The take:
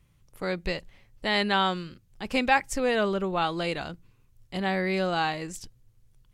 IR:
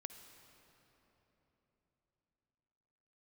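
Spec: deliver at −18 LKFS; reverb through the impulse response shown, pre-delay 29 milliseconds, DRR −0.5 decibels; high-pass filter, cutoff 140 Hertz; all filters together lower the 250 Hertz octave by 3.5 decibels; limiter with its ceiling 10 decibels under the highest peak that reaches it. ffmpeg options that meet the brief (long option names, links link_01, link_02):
-filter_complex "[0:a]highpass=140,equalizer=frequency=250:width_type=o:gain=-4,alimiter=limit=-17.5dB:level=0:latency=1,asplit=2[link_01][link_02];[1:a]atrim=start_sample=2205,adelay=29[link_03];[link_02][link_03]afir=irnorm=-1:irlink=0,volume=4.5dB[link_04];[link_01][link_04]amix=inputs=2:normalize=0,volume=9.5dB"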